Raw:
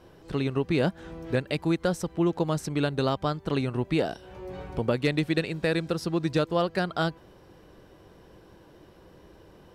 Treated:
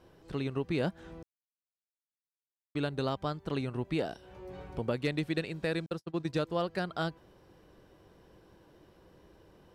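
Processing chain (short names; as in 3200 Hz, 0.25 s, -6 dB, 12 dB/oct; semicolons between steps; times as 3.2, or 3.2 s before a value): 1.23–2.75 mute; 5.86–6.33 gate -27 dBFS, range -56 dB; gain -6.5 dB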